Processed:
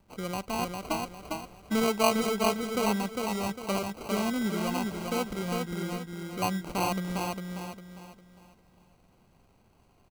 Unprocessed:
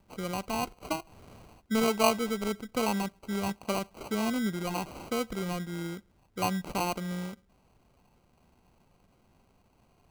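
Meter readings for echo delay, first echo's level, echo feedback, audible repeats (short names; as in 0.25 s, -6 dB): 0.403 s, -3.5 dB, 35%, 4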